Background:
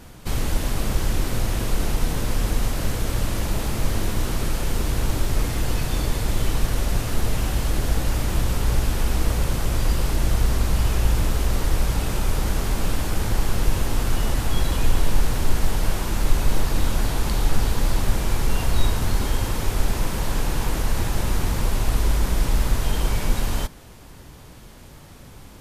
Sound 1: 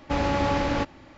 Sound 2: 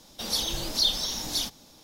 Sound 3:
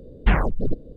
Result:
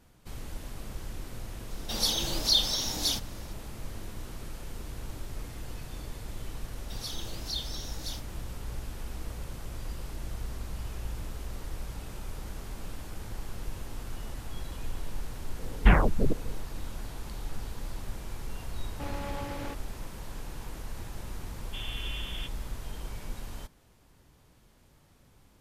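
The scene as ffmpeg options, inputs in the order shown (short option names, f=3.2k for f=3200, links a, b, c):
-filter_complex "[2:a]asplit=2[a][b];[1:a]asplit=2[c][d];[0:a]volume=-17dB[e];[c]alimiter=limit=-21.5dB:level=0:latency=1:release=71[f];[d]lowpass=f=3.1k:t=q:w=0.5098,lowpass=f=3.1k:t=q:w=0.6013,lowpass=f=3.1k:t=q:w=0.9,lowpass=f=3.1k:t=q:w=2.563,afreqshift=-3600[g];[a]atrim=end=1.83,asetpts=PTS-STARTPTS,afade=t=in:d=0.004:c=hsin,afade=t=out:st=1.826:d=0.004:c=hsin,adelay=1700[h];[b]atrim=end=1.83,asetpts=PTS-STARTPTS,volume=-11.5dB,afade=t=in:d=0.004:c=hsin,afade=t=out:st=1.826:d=0.004:c=hsin,adelay=6710[i];[3:a]atrim=end=0.96,asetpts=PTS-STARTPTS,volume=-1dB,afade=t=in:d=0.004:c=hsin,afade=t=out:st=0.956:d=0.004:c=hsin,adelay=15590[j];[f]atrim=end=1.17,asetpts=PTS-STARTPTS,volume=-8dB,afade=t=in:d=0.004:c=hsin,afade=t=out:st=1.166:d=0.004:c=hsin,adelay=18900[k];[g]atrim=end=1.17,asetpts=PTS-STARTPTS,volume=-17dB,afade=t=in:d=0.004:c=hsin,afade=t=out:st=1.166:d=0.004:c=hsin,adelay=21630[l];[e][h][i][j][k][l]amix=inputs=6:normalize=0"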